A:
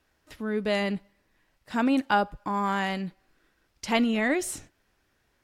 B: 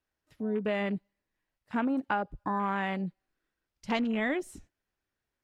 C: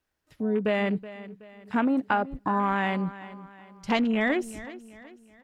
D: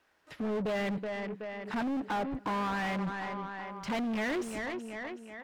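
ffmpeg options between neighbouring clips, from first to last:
-af "afwtdn=0.0178,acompressor=threshold=-26dB:ratio=6"
-af "aecho=1:1:374|748|1122|1496:0.158|0.0666|0.028|0.0117,volume=5dB"
-filter_complex "[0:a]asoftclip=type=hard:threshold=-28.5dB,asplit=2[a][b];[b]highpass=f=720:p=1,volume=22dB,asoftclip=type=tanh:threshold=-28.5dB[c];[a][c]amix=inputs=2:normalize=0,lowpass=f=1.9k:p=1,volume=-6dB"

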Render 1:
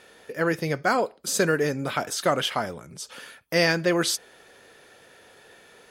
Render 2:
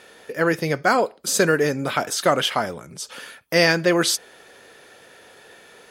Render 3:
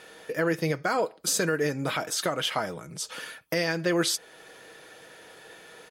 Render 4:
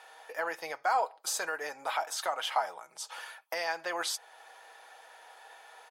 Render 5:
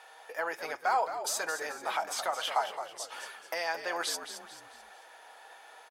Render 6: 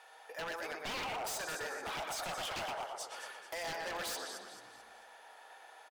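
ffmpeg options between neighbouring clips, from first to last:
-af "lowshelf=f=110:g=-5.5,volume=4.5dB"
-af "aecho=1:1:6.3:0.36,alimiter=limit=-13.5dB:level=0:latency=1:release=376,volume=-1.5dB"
-af "highpass=f=820:t=q:w=4.2,volume=-7dB"
-filter_complex "[0:a]asplit=5[a][b][c][d][e];[b]adelay=219,afreqshift=-73,volume=-10dB[f];[c]adelay=438,afreqshift=-146,volume=-18dB[g];[d]adelay=657,afreqshift=-219,volume=-25.9dB[h];[e]adelay=876,afreqshift=-292,volume=-33.9dB[i];[a][f][g][h][i]amix=inputs=5:normalize=0"
-filter_complex "[0:a]asplit=2[a][b];[b]adelay=120,lowpass=f=2.8k:p=1,volume=-4dB,asplit=2[c][d];[d]adelay=120,lowpass=f=2.8k:p=1,volume=0.49,asplit=2[e][f];[f]adelay=120,lowpass=f=2.8k:p=1,volume=0.49,asplit=2[g][h];[h]adelay=120,lowpass=f=2.8k:p=1,volume=0.49,asplit=2[i][j];[j]adelay=120,lowpass=f=2.8k:p=1,volume=0.49,asplit=2[k][l];[l]adelay=120,lowpass=f=2.8k:p=1,volume=0.49[m];[a][c][e][g][i][k][m]amix=inputs=7:normalize=0,aeval=exprs='0.0335*(abs(mod(val(0)/0.0335+3,4)-2)-1)':c=same,volume=-4.5dB"

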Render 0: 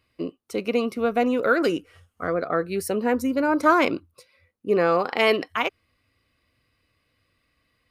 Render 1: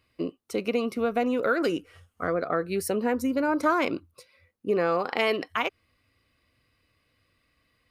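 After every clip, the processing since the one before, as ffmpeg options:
-af "acompressor=threshold=-24dB:ratio=2"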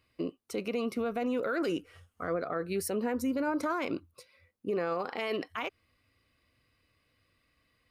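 -af "alimiter=limit=-21dB:level=0:latency=1:release=30,volume=-2.5dB"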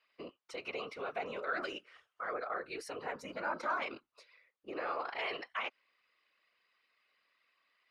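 -af "highpass=780,lowpass=4.2k,afftfilt=real='hypot(re,im)*cos(2*PI*random(0))':imag='hypot(re,im)*sin(2*PI*random(1))':win_size=512:overlap=0.75,volume=6dB"

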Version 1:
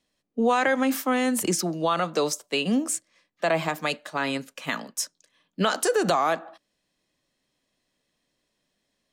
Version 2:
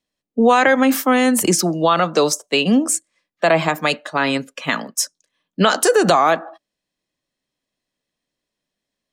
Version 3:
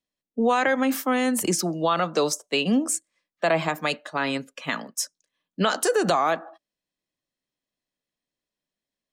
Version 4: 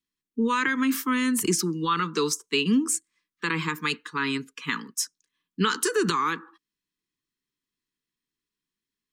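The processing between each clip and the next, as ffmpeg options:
-af "afftdn=nr=14:nf=-48,volume=8.5dB"
-af "dynaudnorm=f=360:g=11:m=11.5dB,volume=-8dB"
-af "asuperstop=centerf=650:order=8:qfactor=1.3"

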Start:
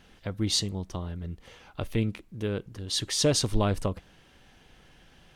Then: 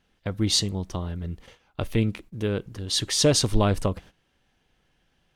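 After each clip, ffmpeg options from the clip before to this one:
-af "agate=range=-16dB:threshold=-48dB:ratio=16:detection=peak,volume=4dB"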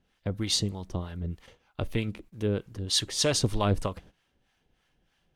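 -filter_complex "[0:a]acrossover=split=700[a][b];[a]aeval=exprs='val(0)*(1-0.7/2+0.7/2*cos(2*PI*3.2*n/s))':c=same[c];[b]aeval=exprs='val(0)*(1-0.7/2-0.7/2*cos(2*PI*3.2*n/s))':c=same[d];[c][d]amix=inputs=2:normalize=0"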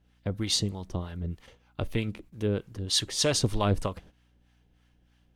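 -af "aeval=exprs='val(0)+0.000631*(sin(2*PI*60*n/s)+sin(2*PI*2*60*n/s)/2+sin(2*PI*3*60*n/s)/3+sin(2*PI*4*60*n/s)/4+sin(2*PI*5*60*n/s)/5)':c=same"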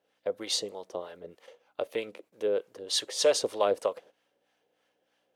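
-af "highpass=f=510:t=q:w=3.5,volume=-3dB"

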